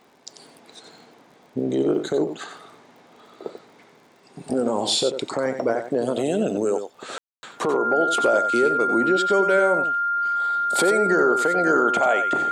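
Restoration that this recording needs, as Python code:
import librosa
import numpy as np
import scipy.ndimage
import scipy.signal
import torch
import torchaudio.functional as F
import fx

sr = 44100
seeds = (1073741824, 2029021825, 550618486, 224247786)

y = fx.fix_declick_ar(x, sr, threshold=6.5)
y = fx.notch(y, sr, hz=1400.0, q=30.0)
y = fx.fix_ambience(y, sr, seeds[0], print_start_s=3.84, print_end_s=4.34, start_s=7.18, end_s=7.43)
y = fx.fix_echo_inverse(y, sr, delay_ms=91, level_db=-9.0)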